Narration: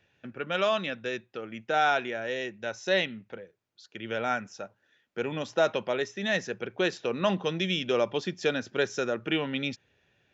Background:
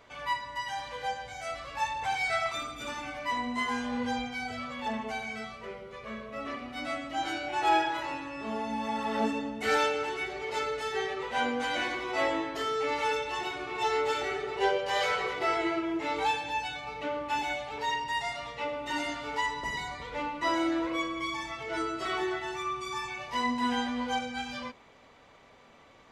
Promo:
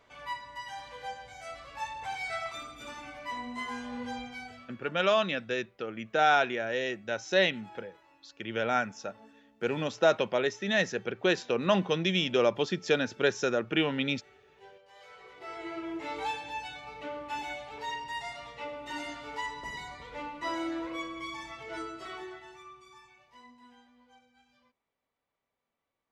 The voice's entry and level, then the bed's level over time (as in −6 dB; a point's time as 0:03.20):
4.45 s, +1.0 dB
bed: 0:04.38 −6 dB
0:05.02 −27 dB
0:14.96 −27 dB
0:15.86 −5.5 dB
0:21.73 −5.5 dB
0:23.87 −30 dB